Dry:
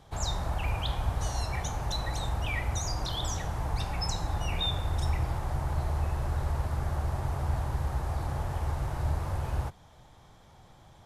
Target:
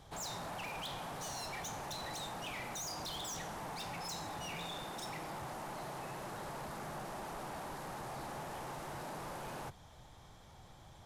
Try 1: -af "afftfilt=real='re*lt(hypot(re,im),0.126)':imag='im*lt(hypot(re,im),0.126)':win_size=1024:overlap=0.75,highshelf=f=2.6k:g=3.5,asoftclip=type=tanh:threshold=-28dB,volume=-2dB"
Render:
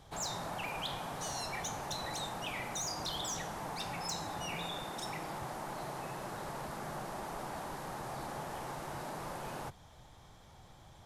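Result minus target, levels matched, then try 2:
soft clip: distortion -10 dB
-af "afftfilt=real='re*lt(hypot(re,im),0.126)':imag='im*lt(hypot(re,im),0.126)':win_size=1024:overlap=0.75,highshelf=f=2.6k:g=3.5,asoftclip=type=tanh:threshold=-37dB,volume=-2dB"

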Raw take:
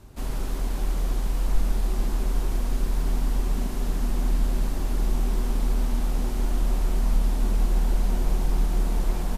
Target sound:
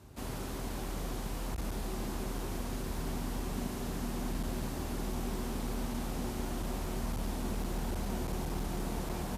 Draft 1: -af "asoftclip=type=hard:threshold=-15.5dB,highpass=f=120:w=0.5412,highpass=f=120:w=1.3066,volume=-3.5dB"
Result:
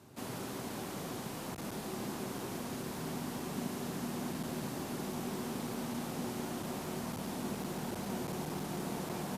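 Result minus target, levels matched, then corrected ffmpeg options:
125 Hz band -2.5 dB
-af "asoftclip=type=hard:threshold=-15.5dB,highpass=f=56:w=0.5412,highpass=f=56:w=1.3066,volume=-3.5dB"

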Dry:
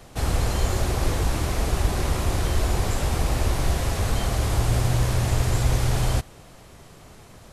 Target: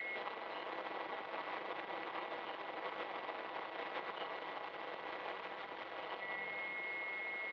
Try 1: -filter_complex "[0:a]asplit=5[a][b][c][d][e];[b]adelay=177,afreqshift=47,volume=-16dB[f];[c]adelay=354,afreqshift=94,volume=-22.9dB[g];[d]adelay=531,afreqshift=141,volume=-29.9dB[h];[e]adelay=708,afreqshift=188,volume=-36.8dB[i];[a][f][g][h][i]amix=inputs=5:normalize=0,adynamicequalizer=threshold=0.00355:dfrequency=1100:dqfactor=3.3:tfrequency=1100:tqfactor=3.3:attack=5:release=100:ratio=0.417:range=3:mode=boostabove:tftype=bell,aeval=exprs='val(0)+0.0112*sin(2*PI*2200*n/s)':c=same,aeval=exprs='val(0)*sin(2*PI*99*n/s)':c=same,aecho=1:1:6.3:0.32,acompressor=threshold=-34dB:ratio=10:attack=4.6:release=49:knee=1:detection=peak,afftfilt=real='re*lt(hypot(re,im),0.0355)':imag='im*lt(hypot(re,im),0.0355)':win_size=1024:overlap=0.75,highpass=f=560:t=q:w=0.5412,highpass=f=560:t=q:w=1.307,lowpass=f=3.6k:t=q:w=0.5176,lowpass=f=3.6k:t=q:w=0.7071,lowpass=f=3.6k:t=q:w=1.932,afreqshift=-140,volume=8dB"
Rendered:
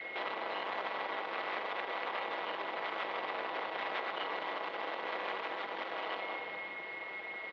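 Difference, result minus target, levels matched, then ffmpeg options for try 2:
compressor: peak gain reduction -7.5 dB
-filter_complex "[0:a]asplit=5[a][b][c][d][e];[b]adelay=177,afreqshift=47,volume=-16dB[f];[c]adelay=354,afreqshift=94,volume=-22.9dB[g];[d]adelay=531,afreqshift=141,volume=-29.9dB[h];[e]adelay=708,afreqshift=188,volume=-36.8dB[i];[a][f][g][h][i]amix=inputs=5:normalize=0,adynamicequalizer=threshold=0.00355:dfrequency=1100:dqfactor=3.3:tfrequency=1100:tqfactor=3.3:attack=5:release=100:ratio=0.417:range=3:mode=boostabove:tftype=bell,aeval=exprs='val(0)+0.0112*sin(2*PI*2200*n/s)':c=same,aeval=exprs='val(0)*sin(2*PI*99*n/s)':c=same,aecho=1:1:6.3:0.32,acompressor=threshold=-42.5dB:ratio=10:attack=4.6:release=49:knee=1:detection=peak,afftfilt=real='re*lt(hypot(re,im),0.0355)':imag='im*lt(hypot(re,im),0.0355)':win_size=1024:overlap=0.75,highpass=f=560:t=q:w=0.5412,highpass=f=560:t=q:w=1.307,lowpass=f=3.6k:t=q:w=0.5176,lowpass=f=3.6k:t=q:w=0.7071,lowpass=f=3.6k:t=q:w=1.932,afreqshift=-140,volume=8dB"

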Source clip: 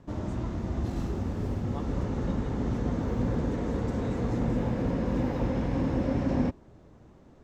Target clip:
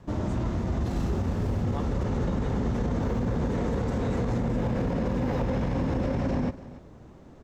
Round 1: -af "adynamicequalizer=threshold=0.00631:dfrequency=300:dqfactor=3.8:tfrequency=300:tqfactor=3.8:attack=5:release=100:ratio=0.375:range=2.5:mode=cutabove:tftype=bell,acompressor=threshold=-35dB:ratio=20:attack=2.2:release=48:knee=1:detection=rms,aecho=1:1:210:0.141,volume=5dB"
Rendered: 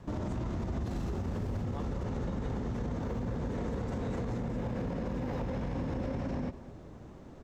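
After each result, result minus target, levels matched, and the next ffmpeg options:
compressor: peak gain reduction +7.5 dB; echo 74 ms early
-af "adynamicequalizer=threshold=0.00631:dfrequency=300:dqfactor=3.8:tfrequency=300:tqfactor=3.8:attack=5:release=100:ratio=0.375:range=2.5:mode=cutabove:tftype=bell,acompressor=threshold=-27dB:ratio=20:attack=2.2:release=48:knee=1:detection=rms,aecho=1:1:210:0.141,volume=5dB"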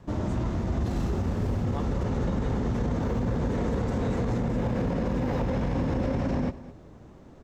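echo 74 ms early
-af "adynamicequalizer=threshold=0.00631:dfrequency=300:dqfactor=3.8:tfrequency=300:tqfactor=3.8:attack=5:release=100:ratio=0.375:range=2.5:mode=cutabove:tftype=bell,acompressor=threshold=-27dB:ratio=20:attack=2.2:release=48:knee=1:detection=rms,aecho=1:1:284:0.141,volume=5dB"

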